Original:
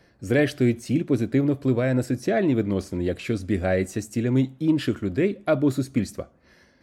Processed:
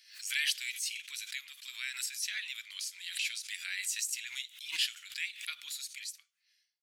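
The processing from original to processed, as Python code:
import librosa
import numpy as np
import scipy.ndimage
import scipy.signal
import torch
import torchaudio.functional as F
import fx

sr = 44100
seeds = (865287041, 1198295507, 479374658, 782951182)

y = fx.fade_out_tail(x, sr, length_s=1.66)
y = scipy.signal.sosfilt(scipy.signal.cheby2(4, 70, 590.0, 'highpass', fs=sr, output='sos'), y)
y = fx.pre_swell(y, sr, db_per_s=110.0)
y = y * librosa.db_to_amplitude(6.5)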